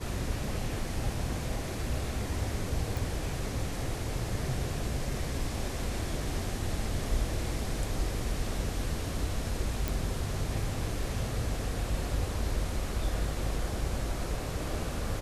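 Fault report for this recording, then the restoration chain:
2.97 s: pop
9.88 s: pop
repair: de-click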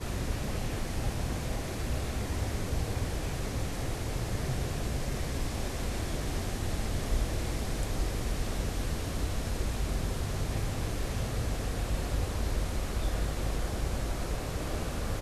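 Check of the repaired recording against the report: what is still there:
nothing left

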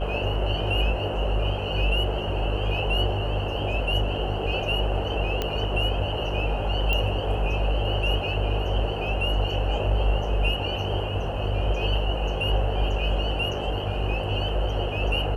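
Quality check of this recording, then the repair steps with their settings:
buzz 50 Hz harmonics 23 -29 dBFS
5.42 s: pop -12 dBFS
6.93 s: pop -13 dBFS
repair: de-click; de-hum 50 Hz, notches 23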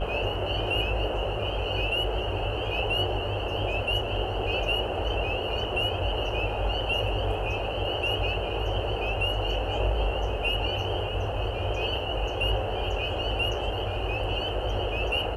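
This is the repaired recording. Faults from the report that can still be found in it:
nothing left

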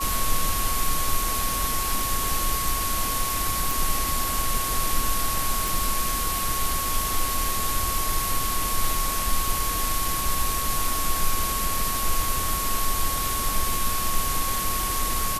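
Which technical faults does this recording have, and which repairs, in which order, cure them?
crackle 34 per s -30 dBFS
whine 1.1 kHz -29 dBFS
3.71 s: pop
5.68 s: pop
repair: de-click; band-stop 1.1 kHz, Q 30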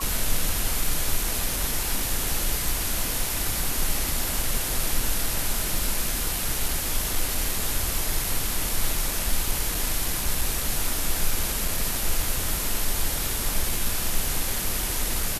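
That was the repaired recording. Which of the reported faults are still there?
nothing left

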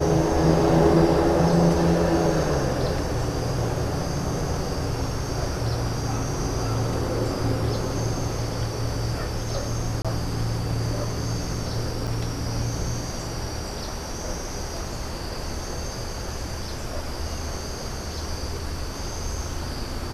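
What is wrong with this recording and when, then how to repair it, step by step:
10.02–10.05 s: dropout 26 ms
12.07–12.08 s: dropout 5.1 ms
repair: interpolate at 10.02 s, 26 ms; interpolate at 12.07 s, 5.1 ms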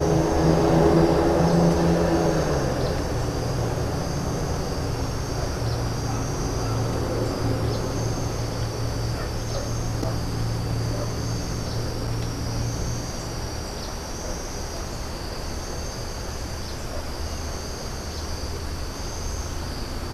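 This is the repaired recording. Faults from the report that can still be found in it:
nothing left

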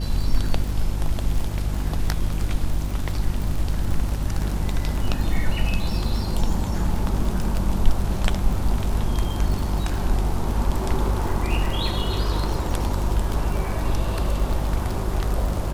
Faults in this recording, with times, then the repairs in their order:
crackle 44 per s -26 dBFS
hum 50 Hz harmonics 7 -26 dBFS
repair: de-click; de-hum 50 Hz, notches 7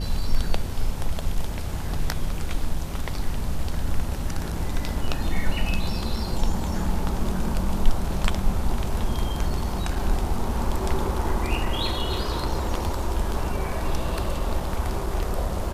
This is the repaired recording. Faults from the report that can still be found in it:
nothing left

